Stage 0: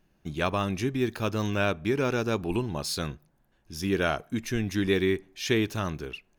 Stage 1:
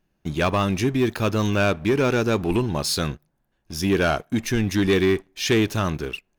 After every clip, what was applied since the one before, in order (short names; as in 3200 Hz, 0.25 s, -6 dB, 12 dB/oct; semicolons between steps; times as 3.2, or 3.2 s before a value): sample leveller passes 2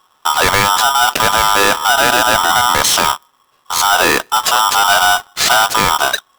in parallel at +0.5 dB: negative-ratio compressor -27 dBFS, ratio -1; on the sum: polarity switched at an audio rate 1100 Hz; gain +5.5 dB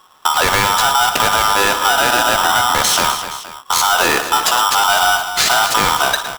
compressor 6:1, threshold -18 dBFS, peak gain reduction 9 dB; on a send: tapped delay 58/112/253/470 ms -12.5/-12.5/-11/-16.5 dB; on the sum: gain +5.5 dB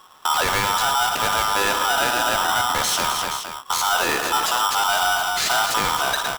limiter -13 dBFS, peak gain reduction 10.5 dB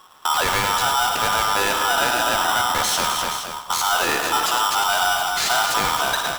split-band echo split 1000 Hz, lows 0.228 s, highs 99 ms, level -10.5 dB